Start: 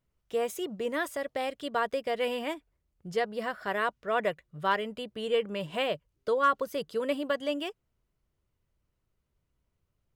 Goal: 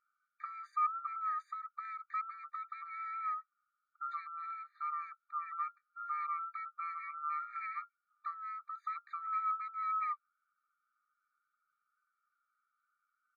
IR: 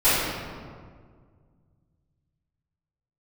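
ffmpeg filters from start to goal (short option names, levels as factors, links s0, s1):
-filter_complex "[0:a]afftfilt=real='real(if(between(b,1,1012),(2*floor((b-1)/92)+1)*92-b,b),0)':imag='imag(if(between(b,1,1012),(2*floor((b-1)/92)+1)*92-b,b),0)*if(between(b,1,1012),-1,1)':win_size=2048:overlap=0.75,aecho=1:1:1.3:0.96,asetrate=33516,aresample=44100,asplit=2[s0][s1];[s1]acompressor=threshold=0.0141:ratio=12,volume=1.19[s2];[s0][s2]amix=inputs=2:normalize=0,lowpass=1000,afftfilt=real='re*eq(mod(floor(b*sr/1024/1200),2),1)':imag='im*eq(mod(floor(b*sr/1024/1200),2),1)':win_size=1024:overlap=0.75"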